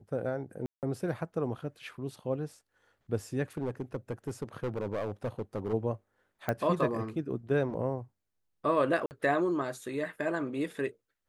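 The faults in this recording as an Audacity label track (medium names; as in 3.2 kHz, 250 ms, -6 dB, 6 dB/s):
0.660000	0.830000	dropout 168 ms
3.570000	5.740000	clipped -28.5 dBFS
6.490000	6.490000	pop -17 dBFS
9.060000	9.110000	dropout 49 ms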